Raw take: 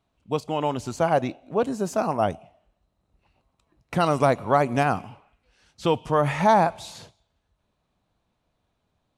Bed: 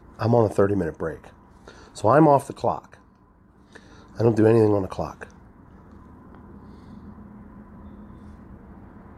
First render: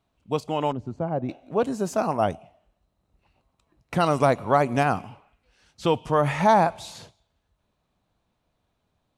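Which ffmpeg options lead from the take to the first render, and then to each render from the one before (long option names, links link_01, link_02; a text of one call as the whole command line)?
ffmpeg -i in.wav -filter_complex "[0:a]asettb=1/sr,asplit=3[link_01][link_02][link_03];[link_01]atrim=end=0.724[link_04];[link_02]atrim=start=0.72:end=1.29,asetpts=PTS-STARTPTS,afade=type=in:duration=0.004:curve=qsin,afade=type=out:start_time=0.566:duration=0.004:curve=qsin,bandpass=frequency=150:width_type=q:width=0.53[link_05];[link_03]atrim=start=1.286[link_06];[link_04][link_05]acrossfade=duration=0.004:curve1=hsin:curve2=qsin[link_07];[link_07][link_06]acrossfade=duration=0.004:curve1=qsin:curve2=hsin" out.wav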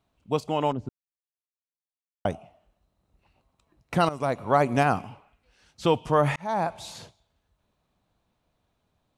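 ffmpeg -i in.wav -filter_complex "[0:a]asplit=5[link_01][link_02][link_03][link_04][link_05];[link_01]atrim=end=0.89,asetpts=PTS-STARTPTS,afade=type=out:start_time=0.886:duration=0.004:curve=hsin[link_06];[link_02]atrim=start=0.89:end=2.25,asetpts=PTS-STARTPTS,volume=0[link_07];[link_03]atrim=start=2.25:end=4.09,asetpts=PTS-STARTPTS,afade=type=in:duration=0.004:curve=hsin,afade=type=out:start_time=1.836:duration=0.004:curve=hsin:silence=0.16788[link_08];[link_04]atrim=start=4.09:end=6.36,asetpts=PTS-STARTPTS,afade=type=in:duration=0.55:silence=0.16788,afade=type=out:start_time=2.266:duration=0.004:curve=hsin[link_09];[link_05]atrim=start=6.36,asetpts=PTS-STARTPTS,afade=type=in:duration=0.55[link_10];[link_06][link_07][link_08][link_09][link_10]concat=n=5:v=0:a=1" out.wav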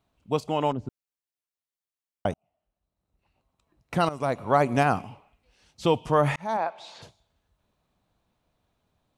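ffmpeg -i in.wav -filter_complex "[0:a]asettb=1/sr,asplit=3[link_01][link_02][link_03];[link_01]atrim=end=5.024[link_04];[link_02]atrim=start=5.02:end=6.06,asetpts=PTS-STARTPTS,afade=type=in:duration=0.004:curve=qsin,afade=type=out:start_time=1.036:duration=0.004:curve=qsin,equalizer=frequency=1500:width_type=o:width=0.49:gain=-6.5[link_05];[link_03]atrim=start=6.056[link_06];[link_04][link_05]acrossfade=duration=0.004:curve1=hsin:curve2=qsin[link_07];[link_07][link_06]acrossfade=duration=0.004:curve1=qsin:curve2=hsin,asplit=3[link_08][link_09][link_10];[link_08]afade=type=out:start_time=6.56:duration=0.02[link_11];[link_09]highpass=420,lowpass=3700,afade=type=in:start_time=6.56:duration=0.02,afade=type=out:start_time=7.01:duration=0.02[link_12];[link_10]afade=type=in:start_time=7.01:duration=0.02[link_13];[link_11][link_12][link_13]amix=inputs=3:normalize=0,asplit=2[link_14][link_15];[link_14]atrim=end=2.34,asetpts=PTS-STARTPTS,afade=type=out:start_time=2.336:duration=0.004:curve=hsin[link_16];[link_15]atrim=start=2.34,asetpts=PTS-STARTPTS,afade=type=in:duration=1.97[link_17];[link_16][link_17]concat=n=2:v=0:a=1" out.wav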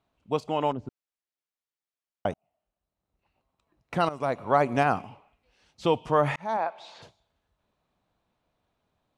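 ffmpeg -i in.wav -af "lowpass=frequency=3900:poles=1,lowshelf=frequency=220:gain=-6" out.wav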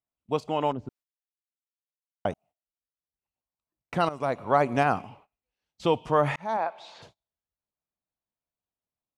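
ffmpeg -i in.wav -af "agate=range=-22dB:threshold=-54dB:ratio=16:detection=peak" out.wav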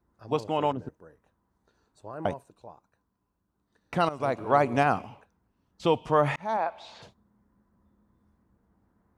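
ffmpeg -i in.wav -i bed.wav -filter_complex "[1:a]volume=-23.5dB[link_01];[0:a][link_01]amix=inputs=2:normalize=0" out.wav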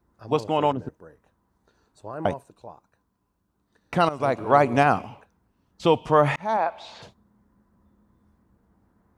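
ffmpeg -i in.wav -af "volume=4.5dB" out.wav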